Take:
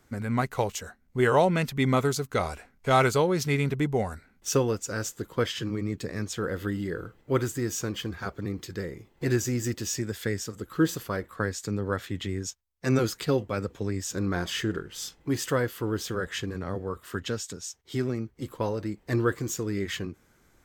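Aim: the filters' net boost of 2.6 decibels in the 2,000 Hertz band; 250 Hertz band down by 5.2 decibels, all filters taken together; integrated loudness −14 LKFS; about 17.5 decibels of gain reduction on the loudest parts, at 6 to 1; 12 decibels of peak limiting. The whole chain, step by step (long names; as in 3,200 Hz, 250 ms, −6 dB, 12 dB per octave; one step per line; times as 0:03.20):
parametric band 250 Hz −7.5 dB
parametric band 2,000 Hz +3.5 dB
downward compressor 6 to 1, threshold −36 dBFS
level +28.5 dB
brickwall limiter −3.5 dBFS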